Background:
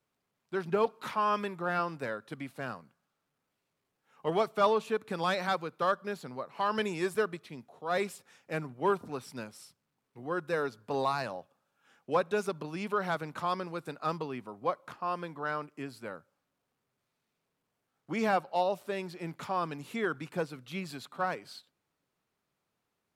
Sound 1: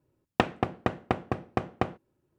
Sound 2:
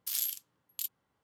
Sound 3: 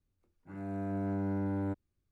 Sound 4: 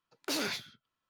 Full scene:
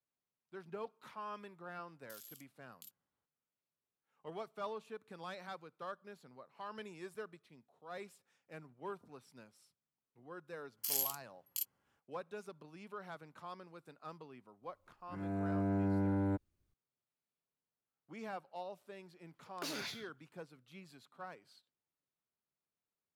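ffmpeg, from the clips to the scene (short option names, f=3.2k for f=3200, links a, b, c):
-filter_complex "[2:a]asplit=2[a][b];[0:a]volume=-16.5dB[c];[a]acompressor=threshold=-36dB:ratio=6:attack=3.2:release=140:knee=1:detection=peak[d];[b]asuperstop=centerf=3700:order=4:qfactor=6.2[e];[4:a]acompressor=threshold=-37dB:ratio=6:attack=3.2:release=140:knee=1:detection=peak[f];[d]atrim=end=1.23,asetpts=PTS-STARTPTS,volume=-14dB,afade=t=in:d=0.004:c=hsin,afade=t=out:st=1.226:d=0.004:c=hsin,adelay=2030[g];[e]atrim=end=1.23,asetpts=PTS-STARTPTS,volume=-2.5dB,afade=t=in:d=0.004:c=hsin,afade=t=out:st=1.226:d=0.004:c=hsin,adelay=10770[h];[3:a]atrim=end=2.11,asetpts=PTS-STARTPTS,afade=t=in:d=0.004:c=hsin,afade=t=out:st=2.106:d=0.004:c=hsin,adelay=14630[i];[f]atrim=end=1.09,asetpts=PTS-STARTPTS,volume=-1.5dB,afade=t=in:d=0.004:c=hsin,afade=t=out:st=1.086:d=0.004:c=hsin,adelay=19340[j];[c][g][h][i][j]amix=inputs=5:normalize=0"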